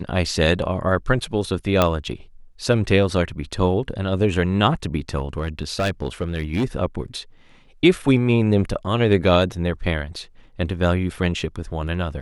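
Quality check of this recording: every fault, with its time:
1.82 pop -3 dBFS
5.17–6.65 clipped -17 dBFS

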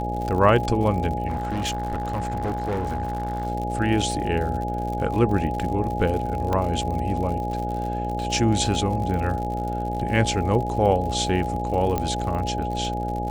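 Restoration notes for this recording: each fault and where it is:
buzz 60 Hz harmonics 12 -29 dBFS
crackle 81/s -30 dBFS
tone 830 Hz -28 dBFS
1.27–3.47 clipped -22 dBFS
6.53 pop -12 dBFS
11.98 pop -11 dBFS

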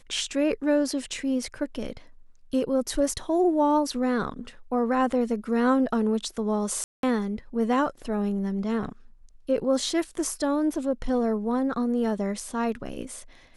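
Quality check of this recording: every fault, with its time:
6.84–7.03 gap 0.192 s

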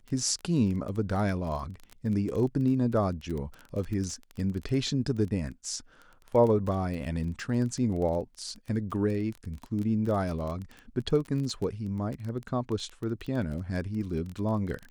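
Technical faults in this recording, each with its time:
crackle 21/s -33 dBFS

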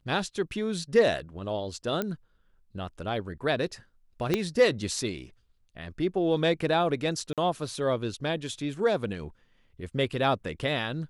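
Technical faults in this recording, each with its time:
2.02 pop -15 dBFS
4.34 pop -11 dBFS
7.33–7.38 gap 47 ms

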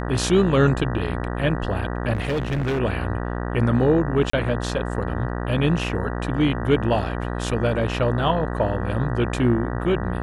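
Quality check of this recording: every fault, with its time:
buzz 60 Hz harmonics 32 -27 dBFS
2.13–2.8 clipped -20 dBFS
4.3–4.33 gap 34 ms

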